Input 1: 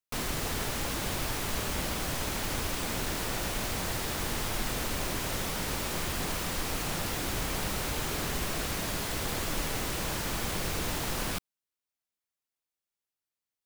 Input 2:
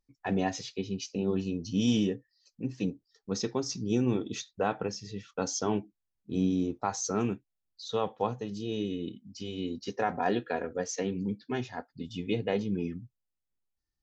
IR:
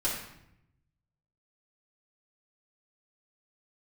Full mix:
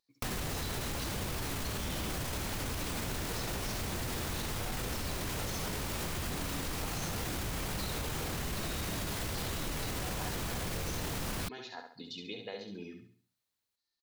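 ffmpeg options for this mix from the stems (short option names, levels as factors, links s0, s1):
-filter_complex "[0:a]equalizer=f=90:t=o:w=2.2:g=6,alimiter=level_in=1.12:limit=0.0631:level=0:latency=1:release=13,volume=0.891,adelay=100,volume=1.41[s0];[1:a]highpass=f=600:p=1,equalizer=f=4100:t=o:w=0.32:g=15,acompressor=threshold=0.00708:ratio=3,volume=1.06,asplit=2[s1][s2];[s2]volume=0.501,aecho=0:1:68|136|204|272|340:1|0.38|0.144|0.0549|0.0209[s3];[s0][s1][s3]amix=inputs=3:normalize=0,acompressor=threshold=0.0224:ratio=6"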